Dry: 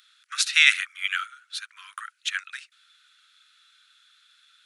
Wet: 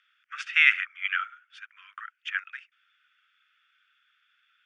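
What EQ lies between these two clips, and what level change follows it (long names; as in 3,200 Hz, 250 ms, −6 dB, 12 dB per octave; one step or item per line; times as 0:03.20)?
dynamic equaliser 980 Hz, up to +7 dB, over −39 dBFS, Q 0.7
transistor ladder low-pass 4,200 Hz, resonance 40%
phaser with its sweep stopped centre 1,700 Hz, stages 4
+3.0 dB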